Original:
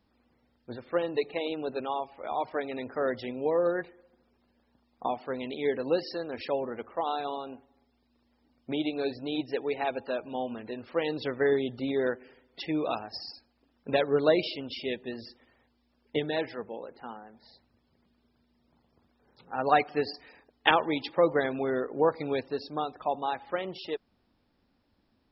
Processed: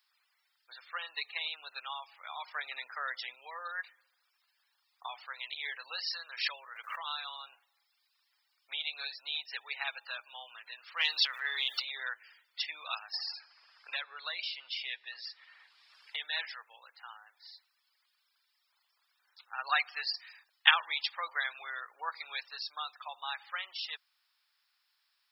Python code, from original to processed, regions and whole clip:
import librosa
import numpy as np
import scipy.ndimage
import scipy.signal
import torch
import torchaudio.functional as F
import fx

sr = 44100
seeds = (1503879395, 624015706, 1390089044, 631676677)

y = fx.chain(x, sr, fx.low_shelf(hz=380.0, db=10.5),
    fx.band_squash(depth_pct=40), at=(2.54, 3.35))
y = fx.chain(y, sr, fx.highpass(hz=330.0, slope=24),
    fx.notch(hz=770.0, q=6.5),
    fx.pre_swell(db_per_s=110.0), at=(6.13, 7.41))
y = fx.chain(y, sr, fx.transient(attack_db=-8, sustain_db=6),
    fx.high_shelf(hz=2800.0, db=8.0),
    fx.sustainer(db_per_s=30.0), at=(10.97, 11.85))
y = fx.chain(y, sr, fx.air_absorb(metres=68.0),
    fx.comb_fb(f0_hz=80.0, decay_s=2.0, harmonics='odd', damping=0.0, mix_pct=30),
    fx.band_squash(depth_pct=70), at=(13.13, 16.2))
y = scipy.signal.sosfilt(scipy.signal.butter(4, 1200.0, 'highpass', fs=sr, output='sos'), y)
y = fx.high_shelf(y, sr, hz=4300.0, db=11.5)